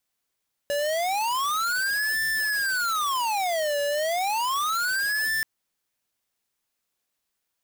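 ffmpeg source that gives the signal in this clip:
ffmpeg -f lavfi -i "aevalsrc='0.0531*(2*lt(mod((1172*t-598/(2*PI*0.32)*sin(2*PI*0.32*t)),1),0.5)-1)':duration=4.73:sample_rate=44100" out.wav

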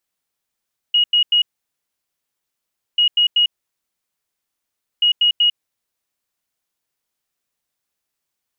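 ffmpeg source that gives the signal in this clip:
ffmpeg -f lavfi -i "aevalsrc='0.282*sin(2*PI*2890*t)*clip(min(mod(mod(t,2.04),0.19),0.1-mod(mod(t,2.04),0.19))/0.005,0,1)*lt(mod(t,2.04),0.57)':duration=6.12:sample_rate=44100" out.wav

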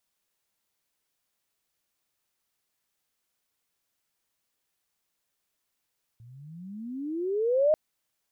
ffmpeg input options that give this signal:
ffmpeg -f lavfi -i "aevalsrc='pow(10,(-17.5+29.5*(t/1.54-1))/20)*sin(2*PI*112*1.54/(30*log(2)/12)*(exp(30*log(2)/12*t/1.54)-1))':duration=1.54:sample_rate=44100" out.wav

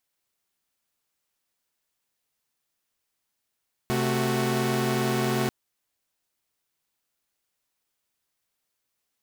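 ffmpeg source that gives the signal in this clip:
ffmpeg -f lavfi -i "aevalsrc='0.0562*((2*mod(130.81*t,1)-1)+(2*mod(220*t,1)-1)+(2*mod(369.99*t,1)-1))':duration=1.59:sample_rate=44100" out.wav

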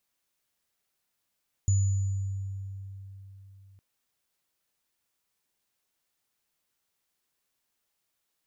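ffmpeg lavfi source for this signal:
ffmpeg -f lavfi -i "aevalsrc='0.106*pow(10,-3*t/3.78)*sin(2*PI*97.3*t)+0.0251*pow(10,-3*t/1.38)*sin(2*PI*6950*t)':duration=2.11:sample_rate=44100" out.wav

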